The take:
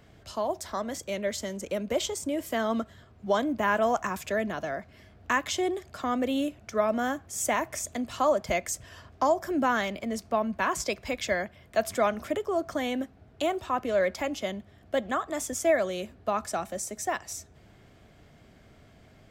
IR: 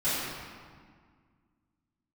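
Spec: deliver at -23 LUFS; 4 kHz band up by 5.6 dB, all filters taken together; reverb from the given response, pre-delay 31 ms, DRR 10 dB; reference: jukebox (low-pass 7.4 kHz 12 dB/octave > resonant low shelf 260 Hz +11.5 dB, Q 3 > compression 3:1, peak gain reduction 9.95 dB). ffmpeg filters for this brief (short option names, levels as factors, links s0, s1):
-filter_complex "[0:a]equalizer=f=4000:t=o:g=8,asplit=2[s0][s1];[1:a]atrim=start_sample=2205,adelay=31[s2];[s1][s2]afir=irnorm=-1:irlink=0,volume=0.0841[s3];[s0][s3]amix=inputs=2:normalize=0,lowpass=7400,lowshelf=f=260:t=q:w=3:g=11.5,acompressor=threshold=0.0398:ratio=3,volume=2.51"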